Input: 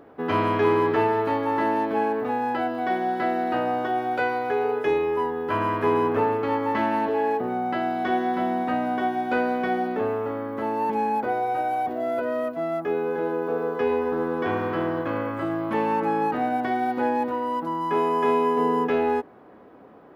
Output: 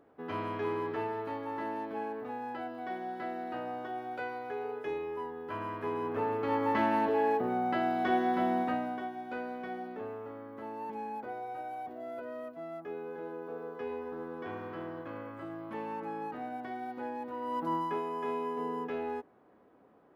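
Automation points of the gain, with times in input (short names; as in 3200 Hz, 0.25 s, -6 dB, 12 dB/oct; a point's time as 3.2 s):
5.97 s -13.5 dB
6.63 s -4.5 dB
8.6 s -4.5 dB
9.11 s -15 dB
17.23 s -15 dB
17.74 s -3 dB
18.02 s -13.5 dB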